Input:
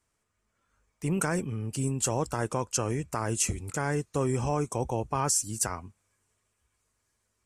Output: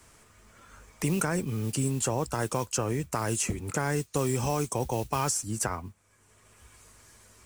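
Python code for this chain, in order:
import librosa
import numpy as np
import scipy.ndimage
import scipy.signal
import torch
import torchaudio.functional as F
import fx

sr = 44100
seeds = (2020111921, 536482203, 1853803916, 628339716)

y = fx.mod_noise(x, sr, seeds[0], snr_db=24)
y = fx.band_squash(y, sr, depth_pct=70)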